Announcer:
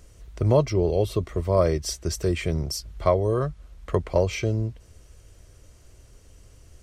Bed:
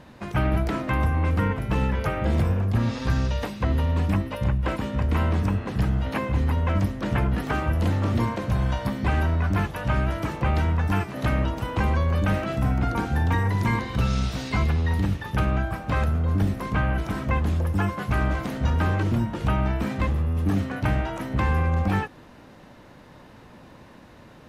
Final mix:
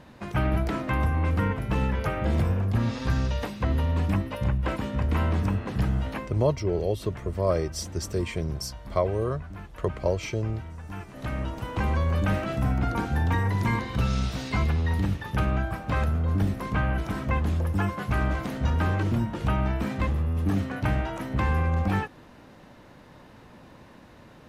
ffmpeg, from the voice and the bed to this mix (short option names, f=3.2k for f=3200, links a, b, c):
-filter_complex "[0:a]adelay=5900,volume=-4dB[a];[1:a]volume=13.5dB,afade=t=out:st=6:d=0.36:silence=0.16788,afade=t=in:st=10.83:d=1.21:silence=0.16788[b];[a][b]amix=inputs=2:normalize=0"